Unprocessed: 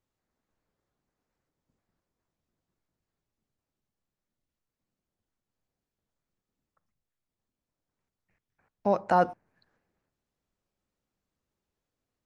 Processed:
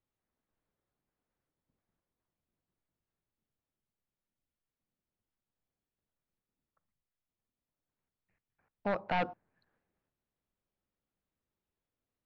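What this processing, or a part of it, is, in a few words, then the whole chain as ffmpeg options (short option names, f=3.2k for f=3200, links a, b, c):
synthesiser wavefolder: -af "aeval=exprs='0.112*(abs(mod(val(0)/0.112+3,4)-2)-1)':c=same,lowpass=f=3.9k:w=0.5412,lowpass=f=3.9k:w=1.3066,volume=-5.5dB"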